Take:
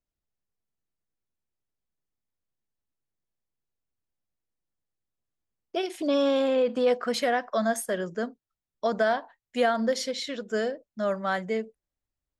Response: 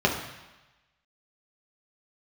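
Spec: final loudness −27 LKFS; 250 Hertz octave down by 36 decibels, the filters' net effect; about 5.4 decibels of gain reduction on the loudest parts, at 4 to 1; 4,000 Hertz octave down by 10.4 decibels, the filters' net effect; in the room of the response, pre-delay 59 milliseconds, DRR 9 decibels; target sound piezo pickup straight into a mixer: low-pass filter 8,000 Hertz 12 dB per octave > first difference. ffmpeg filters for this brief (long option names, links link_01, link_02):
-filter_complex "[0:a]equalizer=frequency=250:width_type=o:gain=-8.5,equalizer=frequency=4000:width_type=o:gain=-6,acompressor=threshold=-27dB:ratio=4,asplit=2[link_01][link_02];[1:a]atrim=start_sample=2205,adelay=59[link_03];[link_02][link_03]afir=irnorm=-1:irlink=0,volume=-24.5dB[link_04];[link_01][link_04]amix=inputs=2:normalize=0,lowpass=8000,aderivative,volume=20dB"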